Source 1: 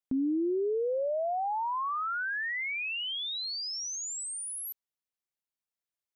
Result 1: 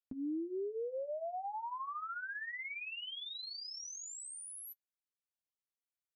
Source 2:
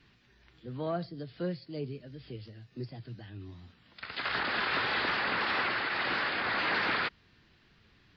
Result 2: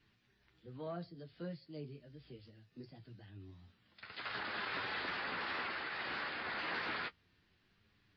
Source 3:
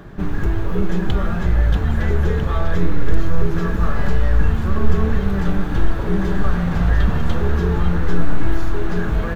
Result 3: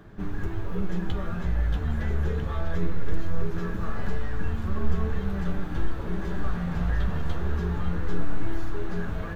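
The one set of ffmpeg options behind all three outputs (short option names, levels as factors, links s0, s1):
-af "flanger=delay=9.4:depth=3.8:regen=-32:speed=0.24:shape=sinusoidal,volume=0.501"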